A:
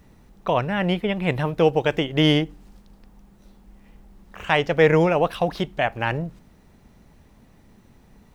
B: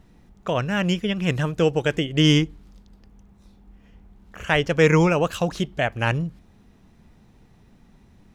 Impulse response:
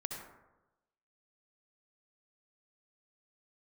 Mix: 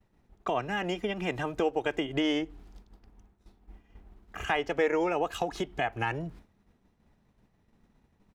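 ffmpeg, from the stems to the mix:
-filter_complex "[0:a]bass=f=250:g=-9,treble=f=4000:g=-15,volume=0.891[s0];[1:a]acompressor=threshold=0.0631:ratio=6,adelay=2.4,volume=1[s1];[s0][s1]amix=inputs=2:normalize=0,agate=range=0.0224:threshold=0.00891:ratio=3:detection=peak,acompressor=threshold=0.0126:ratio=1.5"

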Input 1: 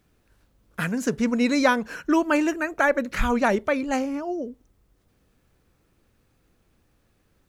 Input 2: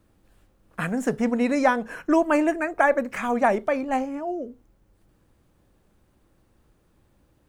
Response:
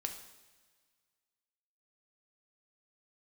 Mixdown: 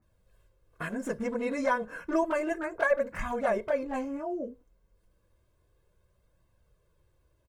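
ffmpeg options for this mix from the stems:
-filter_complex "[0:a]lowpass=f=1500:w=0.5412,lowpass=f=1500:w=1.3066,acompressor=threshold=0.0501:ratio=4,volume=14.1,asoftclip=hard,volume=0.0708,volume=0.75[s0];[1:a]aecho=1:1:1.9:0.7,volume=-1,adelay=21,volume=0.531,asplit=2[s1][s2];[s2]apad=whole_len=329868[s3];[s0][s3]sidechaingate=range=0.0224:threshold=0.00224:ratio=16:detection=peak[s4];[s4][s1]amix=inputs=2:normalize=0,flanger=delay=1:depth=3.5:regen=-48:speed=0.31:shape=triangular"

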